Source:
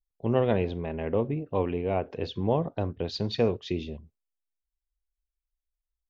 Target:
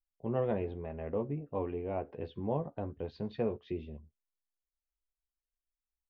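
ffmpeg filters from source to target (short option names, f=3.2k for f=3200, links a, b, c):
-filter_complex "[0:a]lowpass=1.9k,asplit=2[a][b];[b]adelay=14,volume=-7dB[c];[a][c]amix=inputs=2:normalize=0,volume=-8.5dB"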